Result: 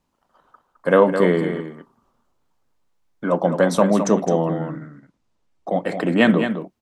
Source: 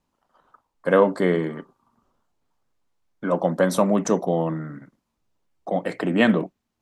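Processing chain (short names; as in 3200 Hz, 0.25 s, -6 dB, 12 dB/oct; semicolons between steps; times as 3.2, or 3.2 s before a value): 3.38–5.88 LPF 8700 Hz 12 dB/oct; on a send: echo 0.212 s -8.5 dB; on the sum: gain +2.5 dB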